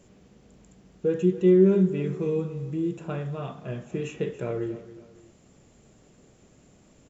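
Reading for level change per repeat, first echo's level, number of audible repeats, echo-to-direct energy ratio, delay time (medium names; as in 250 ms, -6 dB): -8.0 dB, -15.5 dB, 2, -15.0 dB, 278 ms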